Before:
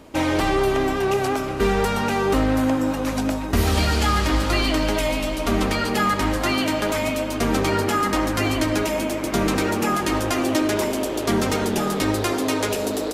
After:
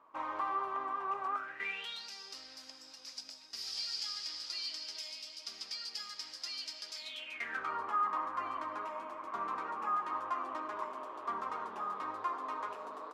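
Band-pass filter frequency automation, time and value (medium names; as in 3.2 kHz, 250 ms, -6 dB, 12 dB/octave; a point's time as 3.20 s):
band-pass filter, Q 9.6
1.29 s 1.1 kHz
2.10 s 5 kHz
6.94 s 5 kHz
7.76 s 1.1 kHz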